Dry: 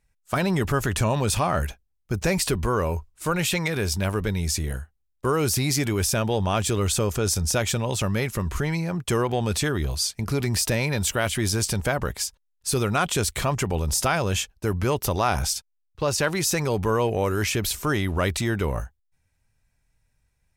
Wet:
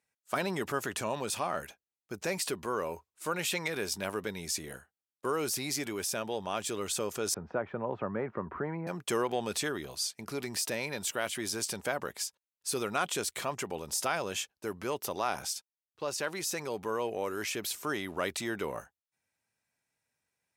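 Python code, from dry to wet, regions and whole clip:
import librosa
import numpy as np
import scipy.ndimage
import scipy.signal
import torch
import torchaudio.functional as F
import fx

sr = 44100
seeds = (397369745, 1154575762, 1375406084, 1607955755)

y = fx.chain(x, sr, fx.lowpass(hz=1500.0, slope=24),
    fx.band_squash(depth_pct=40), at=(7.34, 8.87))
y = scipy.signal.sosfilt(scipy.signal.butter(2, 270.0, 'highpass', fs=sr, output='sos'), y)
y = fx.rider(y, sr, range_db=10, speed_s=2.0)
y = F.gain(torch.from_numpy(y), -8.0).numpy()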